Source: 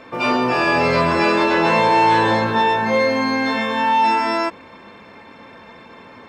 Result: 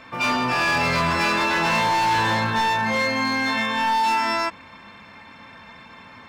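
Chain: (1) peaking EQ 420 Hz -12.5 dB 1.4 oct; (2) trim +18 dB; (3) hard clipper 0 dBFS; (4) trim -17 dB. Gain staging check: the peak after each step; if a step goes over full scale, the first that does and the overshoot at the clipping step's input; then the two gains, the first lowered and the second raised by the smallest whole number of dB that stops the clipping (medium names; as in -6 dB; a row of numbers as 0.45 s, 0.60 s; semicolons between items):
-8.5 dBFS, +9.5 dBFS, 0.0 dBFS, -17.0 dBFS; step 2, 9.5 dB; step 2 +8 dB, step 4 -7 dB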